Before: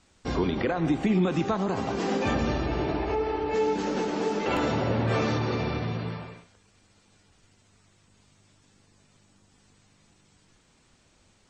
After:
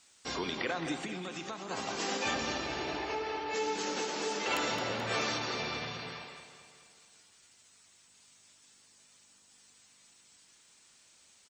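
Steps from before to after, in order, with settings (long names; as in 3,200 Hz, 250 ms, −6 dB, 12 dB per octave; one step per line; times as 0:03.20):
spectral tilt +4 dB per octave
0:00.95–0:01.71: downward compressor, threshold −33 dBFS, peak gain reduction 9 dB
repeating echo 216 ms, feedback 55%, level −11 dB
level −5 dB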